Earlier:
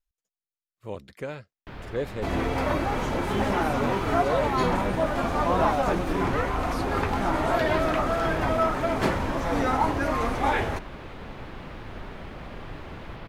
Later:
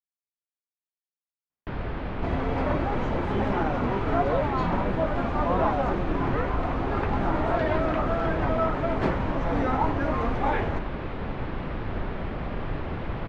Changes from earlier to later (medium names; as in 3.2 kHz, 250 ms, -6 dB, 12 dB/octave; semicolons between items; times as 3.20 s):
speech: muted; first sound +9.0 dB; master: add tape spacing loss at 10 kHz 24 dB